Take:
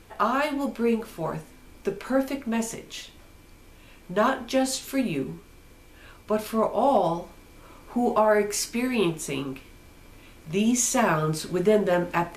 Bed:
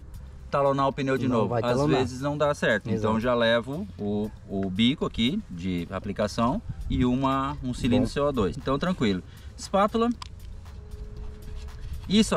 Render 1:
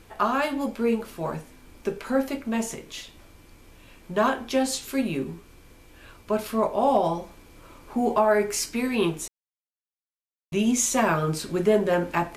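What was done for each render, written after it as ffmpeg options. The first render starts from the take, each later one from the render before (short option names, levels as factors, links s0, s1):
-filter_complex "[0:a]asplit=3[s0][s1][s2];[s0]atrim=end=9.28,asetpts=PTS-STARTPTS,afade=t=out:st=9.276:d=0.004:c=hsin[s3];[s1]atrim=start=9.28:end=10.52,asetpts=PTS-STARTPTS,volume=0[s4];[s2]atrim=start=10.52,asetpts=PTS-STARTPTS,afade=t=in:d=0.004:c=hsin[s5];[s3][s4][s5]concat=n=3:v=0:a=1"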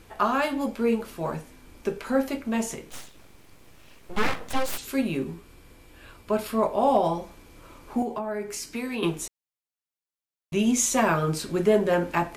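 -filter_complex "[0:a]asplit=3[s0][s1][s2];[s0]afade=t=out:st=2.89:d=0.02[s3];[s1]aeval=exprs='abs(val(0))':c=same,afade=t=in:st=2.89:d=0.02,afade=t=out:st=4.77:d=0.02[s4];[s2]afade=t=in:st=4.77:d=0.02[s5];[s3][s4][s5]amix=inputs=3:normalize=0,asettb=1/sr,asplit=3[s6][s7][s8];[s6]atrim=end=5.344[s9];[s7]atrim=start=5.34:end=7.21,asetpts=PTS-STARTPTS,afade=t=in:d=0.004:c=qsin,afade=t=out:st=1.866:d=0.004:c=qsin,bandreject=f=6100:w=12[s10];[s8]atrim=start=7.206[s11];[s9][s10]acrossfade=d=0.004:c1=hsin:c2=qsin[s12];[s12][s11]acrossfade=d=0.004:c1=qsin:c2=hsin,asettb=1/sr,asplit=3[s13][s14][s15];[s13]atrim=end=8.024[s16];[s14]atrim=start=8.02:end=9.03,asetpts=PTS-STARTPTS,afade=t=in:d=0.004:c=qsin,afade=t=out:st=1.006:d=0.004:c=qsin,acrossover=split=130|320[s17][s18][s19];[s17]acompressor=threshold=0.00141:ratio=4[s20];[s18]acompressor=threshold=0.0178:ratio=4[s21];[s19]acompressor=threshold=0.0224:ratio=4[s22];[s20][s21][s22]amix=inputs=3:normalize=0[s23];[s15]atrim=start=9.026[s24];[s16][s23]acrossfade=d=0.004:c1=hsin:c2=qsin[s25];[s25][s24]acrossfade=d=0.004:c1=qsin:c2=hsin"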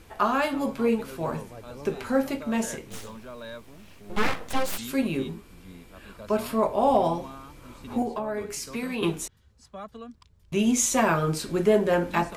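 -filter_complex "[1:a]volume=0.126[s0];[0:a][s0]amix=inputs=2:normalize=0"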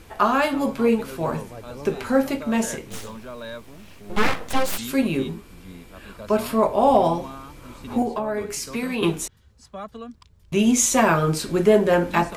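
-af "volume=1.68"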